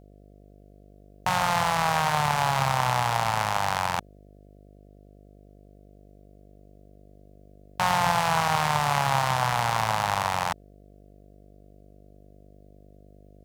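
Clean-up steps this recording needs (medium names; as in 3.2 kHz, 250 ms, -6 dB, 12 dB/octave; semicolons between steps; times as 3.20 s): de-hum 49.9 Hz, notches 14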